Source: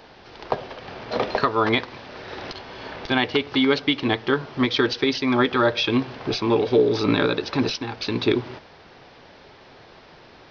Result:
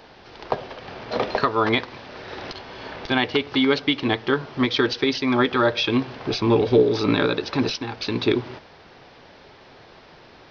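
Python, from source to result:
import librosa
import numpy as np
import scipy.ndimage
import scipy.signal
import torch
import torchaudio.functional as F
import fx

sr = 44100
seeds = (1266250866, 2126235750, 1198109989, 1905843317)

y = fx.low_shelf(x, sr, hz=170.0, db=9.0, at=(6.39, 6.83))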